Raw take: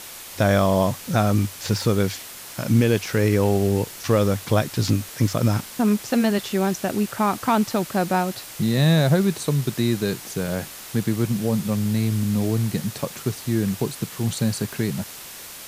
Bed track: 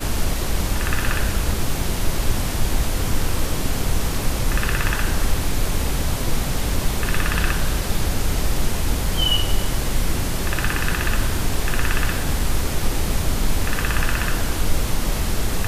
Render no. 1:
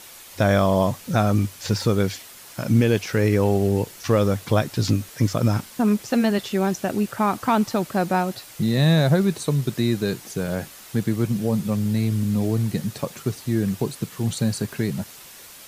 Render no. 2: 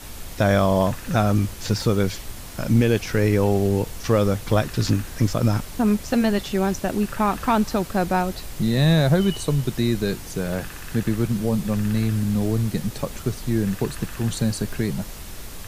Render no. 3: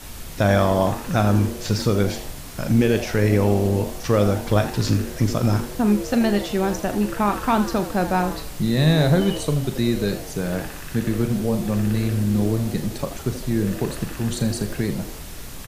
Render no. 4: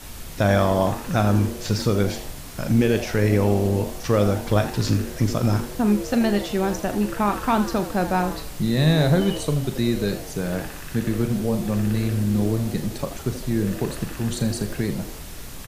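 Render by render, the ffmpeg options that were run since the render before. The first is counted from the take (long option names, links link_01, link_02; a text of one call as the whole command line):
ffmpeg -i in.wav -af "afftdn=noise_reduction=6:noise_floor=-39" out.wav
ffmpeg -i in.wav -i bed.wav -filter_complex "[1:a]volume=-16dB[link_01];[0:a][link_01]amix=inputs=2:normalize=0" out.wav
ffmpeg -i in.wav -filter_complex "[0:a]asplit=2[link_01][link_02];[link_02]adelay=39,volume=-11dB[link_03];[link_01][link_03]amix=inputs=2:normalize=0,asplit=2[link_04][link_05];[link_05]asplit=4[link_06][link_07][link_08][link_09];[link_06]adelay=81,afreqshift=130,volume=-13dB[link_10];[link_07]adelay=162,afreqshift=260,volume=-20.3dB[link_11];[link_08]adelay=243,afreqshift=390,volume=-27.7dB[link_12];[link_09]adelay=324,afreqshift=520,volume=-35dB[link_13];[link_10][link_11][link_12][link_13]amix=inputs=4:normalize=0[link_14];[link_04][link_14]amix=inputs=2:normalize=0" out.wav
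ffmpeg -i in.wav -af "volume=-1dB" out.wav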